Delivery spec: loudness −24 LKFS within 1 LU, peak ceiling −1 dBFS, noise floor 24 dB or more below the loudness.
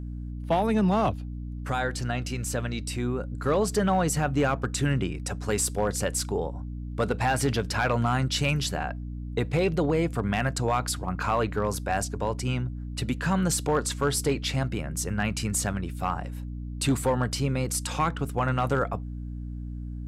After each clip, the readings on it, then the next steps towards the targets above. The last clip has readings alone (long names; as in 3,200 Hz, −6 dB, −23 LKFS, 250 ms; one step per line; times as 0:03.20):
share of clipped samples 0.4%; peaks flattened at −16.5 dBFS; mains hum 60 Hz; hum harmonics up to 300 Hz; level of the hum −32 dBFS; integrated loudness −27.5 LKFS; sample peak −16.5 dBFS; target loudness −24.0 LKFS
→ clipped peaks rebuilt −16.5 dBFS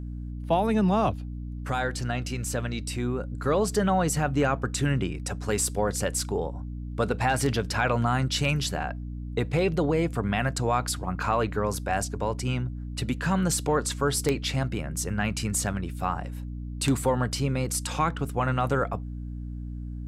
share of clipped samples 0.0%; mains hum 60 Hz; hum harmonics up to 300 Hz; level of the hum −32 dBFS
→ hum removal 60 Hz, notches 5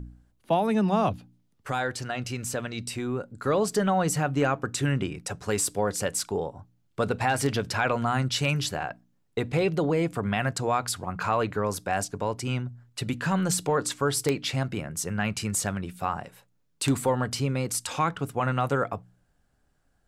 mains hum none found; integrated loudness −27.5 LKFS; sample peak −7.5 dBFS; target loudness −24.0 LKFS
→ level +3.5 dB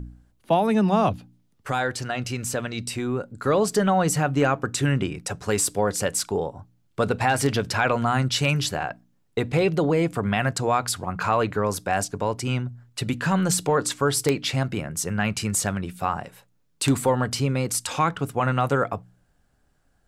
integrated loudness −24.0 LKFS; sample peak −4.0 dBFS; background noise floor −65 dBFS